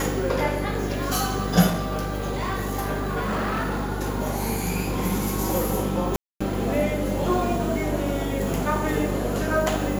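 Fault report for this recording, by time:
buzz 50 Hz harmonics 10 -29 dBFS
1.67–3.90 s: clipped -21.5 dBFS
6.16–6.41 s: dropout 245 ms

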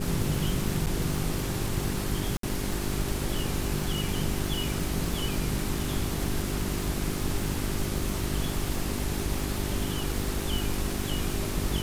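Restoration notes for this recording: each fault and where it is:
crackle 320 per s -32 dBFS
hum 50 Hz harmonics 8 -34 dBFS
0.86–0.87 s: dropout 7.7 ms
2.37–2.43 s: dropout 63 ms

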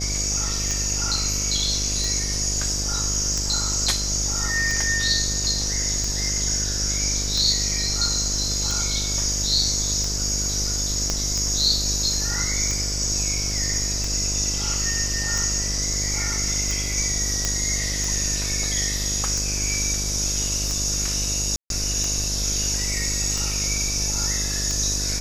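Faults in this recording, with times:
buzz 50 Hz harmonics 14 -29 dBFS
tick 45 rpm
11.10 s: pop -10 dBFS
17.45 s: pop -7 dBFS
21.56–21.70 s: dropout 142 ms

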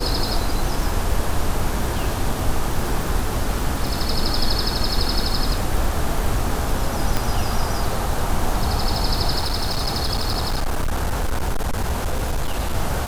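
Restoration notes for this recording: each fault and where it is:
crackle 110 per s -24 dBFS
7.17 s: pop
9.40–12.76 s: clipped -17.5 dBFS

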